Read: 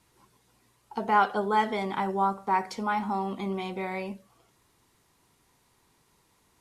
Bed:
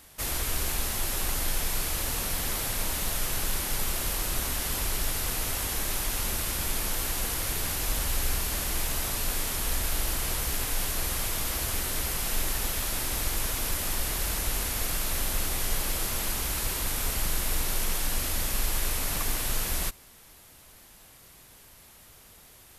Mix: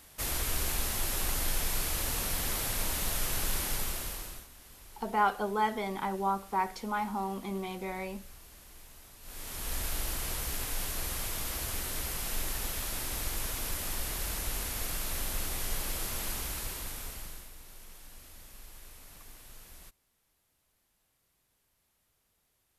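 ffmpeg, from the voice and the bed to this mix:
-filter_complex "[0:a]adelay=4050,volume=0.596[s0];[1:a]volume=5.96,afade=t=out:st=3.65:d=0.82:silence=0.0891251,afade=t=in:st=9.21:d=0.59:silence=0.125893,afade=t=out:st=16.34:d=1.18:silence=0.141254[s1];[s0][s1]amix=inputs=2:normalize=0"

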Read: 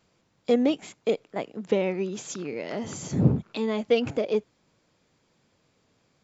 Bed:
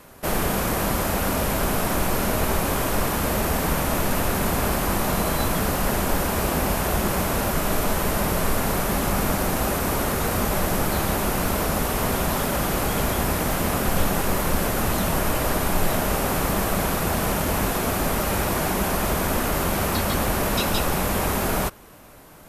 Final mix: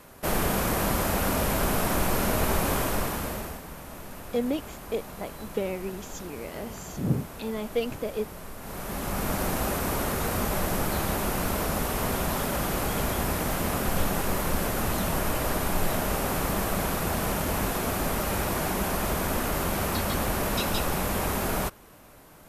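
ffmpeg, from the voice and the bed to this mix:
-filter_complex "[0:a]adelay=3850,volume=0.531[s0];[1:a]volume=3.76,afade=t=out:st=2.74:d=0.88:silence=0.158489,afade=t=in:st=8.59:d=0.84:silence=0.199526[s1];[s0][s1]amix=inputs=2:normalize=0"

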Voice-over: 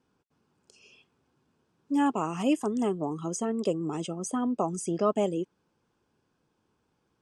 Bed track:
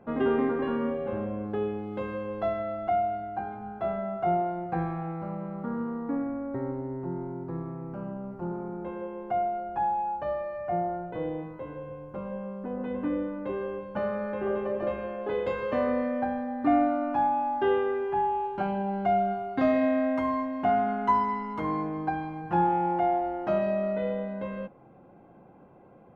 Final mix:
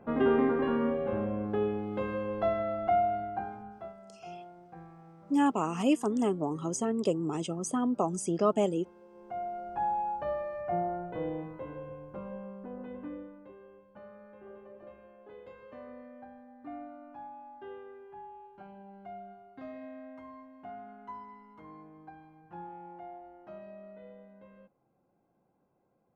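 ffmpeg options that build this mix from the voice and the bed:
-filter_complex "[0:a]adelay=3400,volume=0.944[s0];[1:a]volume=7.08,afade=t=out:st=3.21:d=0.73:silence=0.105925,afade=t=in:st=9.07:d=0.88:silence=0.141254,afade=t=out:st=11.68:d=1.87:silence=0.125893[s1];[s0][s1]amix=inputs=2:normalize=0"

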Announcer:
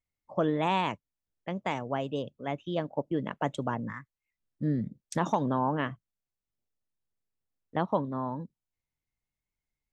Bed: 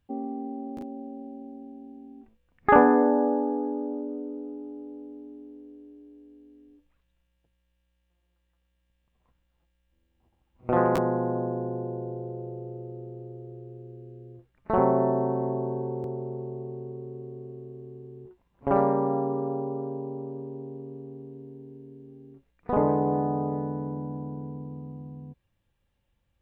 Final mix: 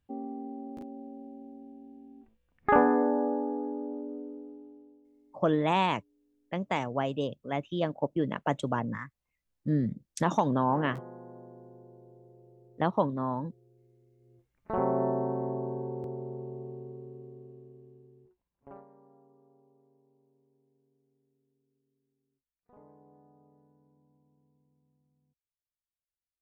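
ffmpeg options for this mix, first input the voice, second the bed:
-filter_complex "[0:a]adelay=5050,volume=1.19[s0];[1:a]volume=3.35,afade=t=out:st=4.17:d=0.85:silence=0.177828,afade=t=in:st=14.18:d=0.87:silence=0.16788,afade=t=out:st=16.66:d=2.19:silence=0.0334965[s1];[s0][s1]amix=inputs=2:normalize=0"

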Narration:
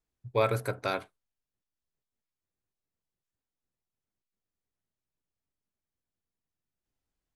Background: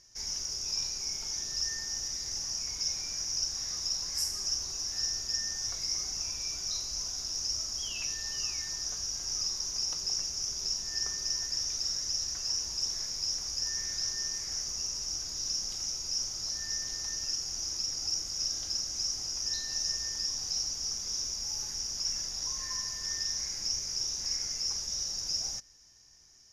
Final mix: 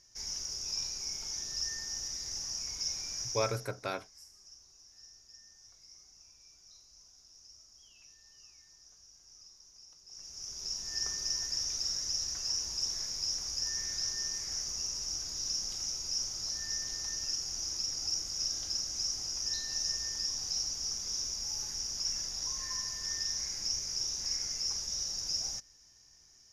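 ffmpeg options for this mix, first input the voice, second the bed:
-filter_complex "[0:a]adelay=3000,volume=0.531[s0];[1:a]volume=8.41,afade=t=out:st=3.23:d=0.47:silence=0.1,afade=t=in:st=10.07:d=0.99:silence=0.0841395[s1];[s0][s1]amix=inputs=2:normalize=0"

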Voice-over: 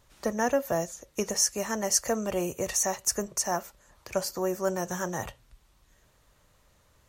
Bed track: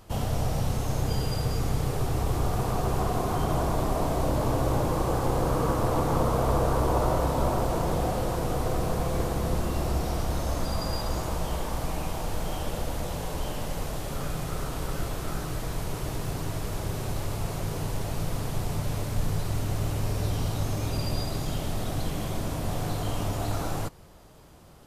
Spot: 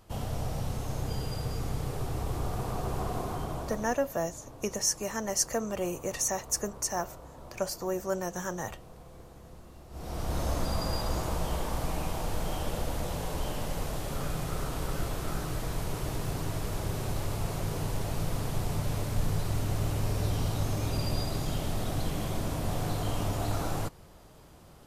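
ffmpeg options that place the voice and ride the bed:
-filter_complex "[0:a]adelay=3450,volume=0.708[s0];[1:a]volume=5.62,afade=t=out:st=3.19:d=0.9:silence=0.149624,afade=t=in:st=9.9:d=0.52:silence=0.0891251[s1];[s0][s1]amix=inputs=2:normalize=0"

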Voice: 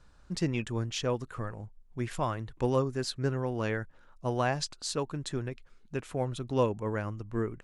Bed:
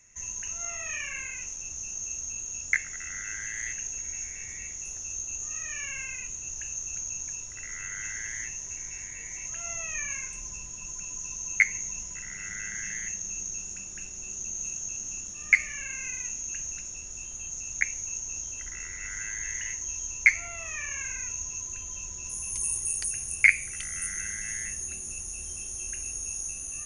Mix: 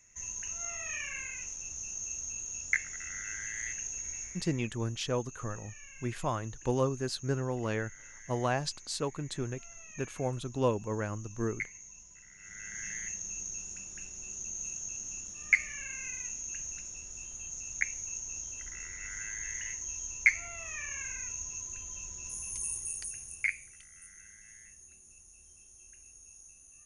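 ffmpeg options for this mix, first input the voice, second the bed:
-filter_complex "[0:a]adelay=4050,volume=0.841[s0];[1:a]volume=2.51,afade=t=out:st=4.09:d=0.56:silence=0.237137,afade=t=in:st=12.37:d=0.5:silence=0.266073,afade=t=out:st=22.32:d=1.54:silence=0.177828[s1];[s0][s1]amix=inputs=2:normalize=0"

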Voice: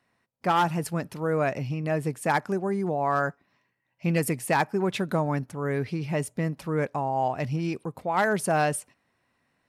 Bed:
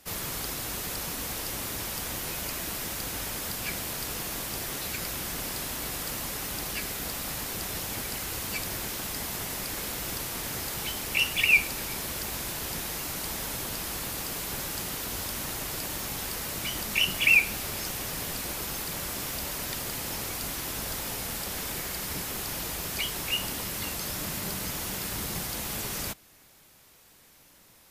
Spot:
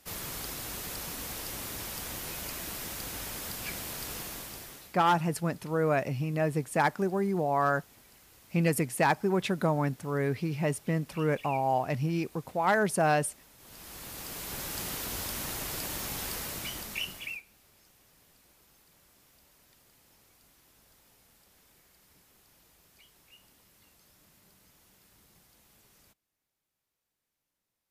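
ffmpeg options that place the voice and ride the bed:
-filter_complex "[0:a]adelay=4500,volume=0.841[s0];[1:a]volume=7.5,afade=t=out:st=4.16:d=0.81:silence=0.105925,afade=t=in:st=13.57:d=1.29:silence=0.0794328,afade=t=out:st=16.33:d=1.09:silence=0.0446684[s1];[s0][s1]amix=inputs=2:normalize=0"

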